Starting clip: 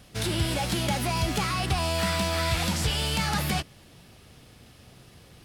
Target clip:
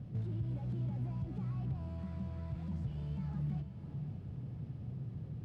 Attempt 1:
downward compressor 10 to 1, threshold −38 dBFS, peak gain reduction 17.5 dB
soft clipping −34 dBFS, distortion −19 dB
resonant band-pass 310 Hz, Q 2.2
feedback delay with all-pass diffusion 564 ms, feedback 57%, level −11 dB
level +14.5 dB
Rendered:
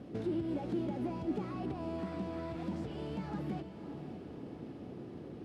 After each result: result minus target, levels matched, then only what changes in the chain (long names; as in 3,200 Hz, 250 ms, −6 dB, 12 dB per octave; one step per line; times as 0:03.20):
125 Hz band −8.0 dB; soft clipping: distortion −9 dB
change: resonant band-pass 130 Hz, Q 2.2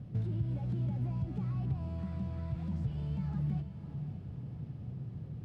soft clipping: distortion −9 dB
change: soft clipping −42 dBFS, distortion −10 dB